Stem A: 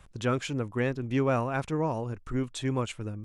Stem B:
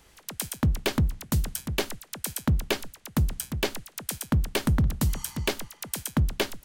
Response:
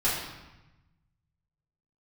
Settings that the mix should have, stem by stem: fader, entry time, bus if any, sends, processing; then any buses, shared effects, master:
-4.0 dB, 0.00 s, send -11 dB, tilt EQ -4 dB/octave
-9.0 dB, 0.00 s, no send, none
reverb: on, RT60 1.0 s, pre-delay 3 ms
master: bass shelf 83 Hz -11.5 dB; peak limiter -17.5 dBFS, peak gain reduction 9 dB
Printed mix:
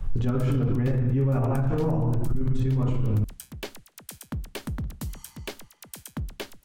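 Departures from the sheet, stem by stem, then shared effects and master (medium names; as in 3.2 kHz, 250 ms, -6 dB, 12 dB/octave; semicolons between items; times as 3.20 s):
stem A: send -11 dB -> -0.5 dB; master: missing bass shelf 83 Hz -11.5 dB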